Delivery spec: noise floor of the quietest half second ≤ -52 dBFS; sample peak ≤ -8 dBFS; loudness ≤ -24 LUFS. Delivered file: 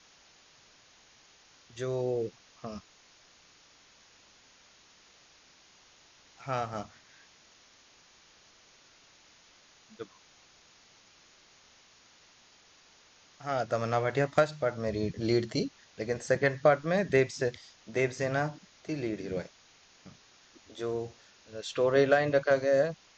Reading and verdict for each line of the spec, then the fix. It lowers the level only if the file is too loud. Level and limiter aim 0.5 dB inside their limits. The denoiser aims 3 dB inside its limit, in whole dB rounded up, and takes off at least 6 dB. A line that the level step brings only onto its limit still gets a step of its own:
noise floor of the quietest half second -60 dBFS: OK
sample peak -12.0 dBFS: OK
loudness -30.0 LUFS: OK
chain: none

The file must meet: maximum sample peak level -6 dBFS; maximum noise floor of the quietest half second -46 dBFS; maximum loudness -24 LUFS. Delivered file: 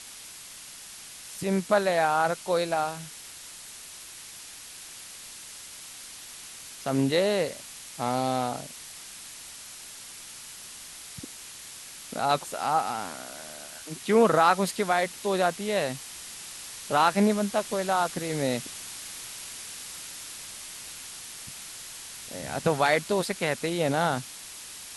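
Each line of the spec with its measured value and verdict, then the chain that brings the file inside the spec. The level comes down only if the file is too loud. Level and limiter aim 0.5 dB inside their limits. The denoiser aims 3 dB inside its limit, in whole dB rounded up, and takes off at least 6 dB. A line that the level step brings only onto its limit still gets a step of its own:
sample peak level -8.0 dBFS: OK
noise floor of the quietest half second -45 dBFS: fail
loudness -28.0 LUFS: OK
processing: denoiser 6 dB, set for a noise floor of -45 dBFS

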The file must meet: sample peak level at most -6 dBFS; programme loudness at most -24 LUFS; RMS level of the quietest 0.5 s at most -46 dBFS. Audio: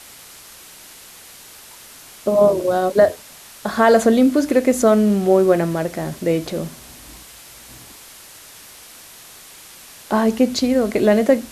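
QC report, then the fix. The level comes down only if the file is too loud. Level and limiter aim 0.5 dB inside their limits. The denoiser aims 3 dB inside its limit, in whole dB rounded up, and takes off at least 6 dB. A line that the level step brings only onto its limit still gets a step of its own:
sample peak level -2.5 dBFS: fail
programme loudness -17.0 LUFS: fail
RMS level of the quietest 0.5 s -42 dBFS: fail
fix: gain -7.5 dB

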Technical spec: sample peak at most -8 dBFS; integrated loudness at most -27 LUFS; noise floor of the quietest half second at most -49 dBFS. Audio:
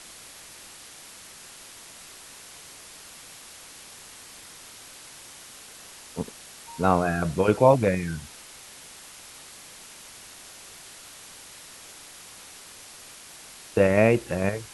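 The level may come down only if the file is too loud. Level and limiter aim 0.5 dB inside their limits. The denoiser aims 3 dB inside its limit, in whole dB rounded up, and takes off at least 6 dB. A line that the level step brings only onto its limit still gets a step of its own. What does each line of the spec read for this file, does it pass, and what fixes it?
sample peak -4.5 dBFS: fail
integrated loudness -23.5 LUFS: fail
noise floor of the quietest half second -46 dBFS: fail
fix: gain -4 dB

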